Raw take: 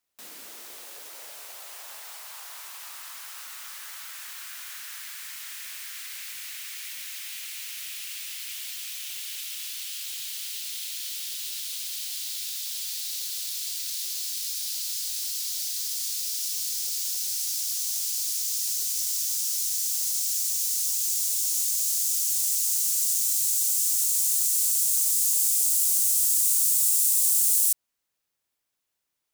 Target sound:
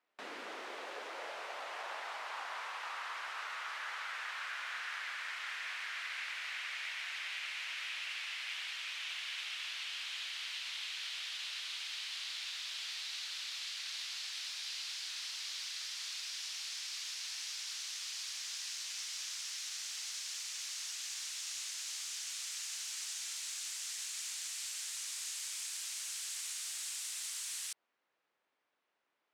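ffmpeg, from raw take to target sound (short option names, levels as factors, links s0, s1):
-af "highpass=320,lowpass=2100,volume=2.37"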